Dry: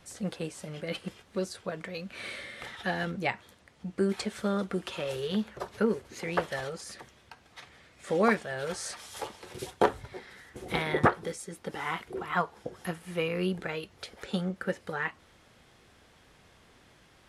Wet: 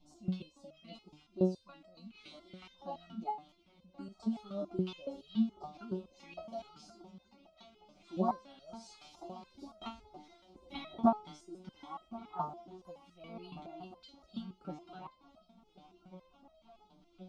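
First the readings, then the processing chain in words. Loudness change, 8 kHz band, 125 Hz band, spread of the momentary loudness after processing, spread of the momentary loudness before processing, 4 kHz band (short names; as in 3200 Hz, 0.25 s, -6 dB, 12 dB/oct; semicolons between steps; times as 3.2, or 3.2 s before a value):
-7.0 dB, under -20 dB, -8.0 dB, 21 LU, 16 LU, -13.0 dB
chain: air absorption 230 m; fixed phaser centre 470 Hz, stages 6; dynamic EQ 710 Hz, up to +7 dB, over -53 dBFS, Q 6.8; phaser stages 2, 2.2 Hz, lowest notch 500–2500 Hz; on a send: swung echo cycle 1.435 s, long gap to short 3:1, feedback 61%, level -20 dB; on the sum: wow and flutter 21 cents; stepped resonator 7.1 Hz 150–640 Hz; gain +12 dB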